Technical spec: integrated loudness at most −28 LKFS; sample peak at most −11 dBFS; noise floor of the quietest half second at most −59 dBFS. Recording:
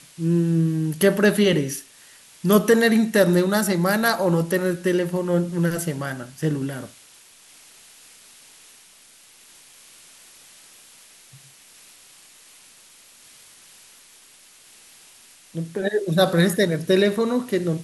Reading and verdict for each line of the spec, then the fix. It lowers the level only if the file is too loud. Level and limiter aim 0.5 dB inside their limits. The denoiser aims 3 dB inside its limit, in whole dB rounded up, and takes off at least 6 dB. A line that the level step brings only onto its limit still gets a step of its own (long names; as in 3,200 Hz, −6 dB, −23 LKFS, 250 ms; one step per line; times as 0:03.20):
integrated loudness −21.0 LKFS: out of spec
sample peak −5.0 dBFS: out of spec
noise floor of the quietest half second −51 dBFS: out of spec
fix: broadband denoise 6 dB, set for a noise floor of −51 dBFS
level −7.5 dB